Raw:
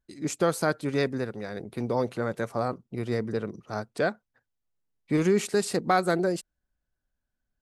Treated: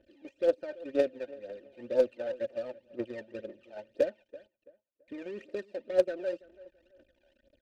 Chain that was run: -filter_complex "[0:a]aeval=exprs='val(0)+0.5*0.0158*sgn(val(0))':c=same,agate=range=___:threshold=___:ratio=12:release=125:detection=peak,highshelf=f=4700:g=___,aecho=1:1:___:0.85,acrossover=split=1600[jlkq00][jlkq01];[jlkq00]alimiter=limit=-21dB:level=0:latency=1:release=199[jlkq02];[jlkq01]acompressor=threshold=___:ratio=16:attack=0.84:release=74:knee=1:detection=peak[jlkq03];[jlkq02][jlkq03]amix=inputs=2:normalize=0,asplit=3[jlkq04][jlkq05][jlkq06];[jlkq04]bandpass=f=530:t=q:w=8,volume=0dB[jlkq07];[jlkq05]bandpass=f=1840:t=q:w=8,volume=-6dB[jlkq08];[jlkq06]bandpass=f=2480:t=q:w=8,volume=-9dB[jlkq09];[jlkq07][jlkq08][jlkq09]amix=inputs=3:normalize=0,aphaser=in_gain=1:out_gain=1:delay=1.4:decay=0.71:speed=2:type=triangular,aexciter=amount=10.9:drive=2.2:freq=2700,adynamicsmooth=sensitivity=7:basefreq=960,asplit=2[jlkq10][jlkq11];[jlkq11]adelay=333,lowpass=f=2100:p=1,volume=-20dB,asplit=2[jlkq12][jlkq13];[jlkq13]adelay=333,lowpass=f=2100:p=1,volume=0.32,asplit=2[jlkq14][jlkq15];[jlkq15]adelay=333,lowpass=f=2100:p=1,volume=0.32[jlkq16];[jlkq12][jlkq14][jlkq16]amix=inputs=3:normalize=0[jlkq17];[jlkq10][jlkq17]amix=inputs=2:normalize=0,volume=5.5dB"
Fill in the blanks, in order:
-12dB, -28dB, 3.5, 3.3, -47dB